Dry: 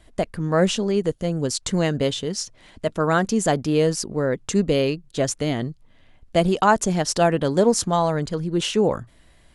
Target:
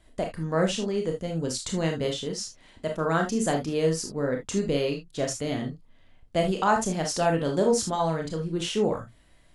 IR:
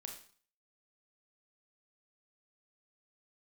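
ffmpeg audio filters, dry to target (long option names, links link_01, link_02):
-filter_complex "[1:a]atrim=start_sample=2205,afade=type=out:start_time=0.14:duration=0.01,atrim=end_sample=6615,asetrate=48510,aresample=44100[link_01];[0:a][link_01]afir=irnorm=-1:irlink=0"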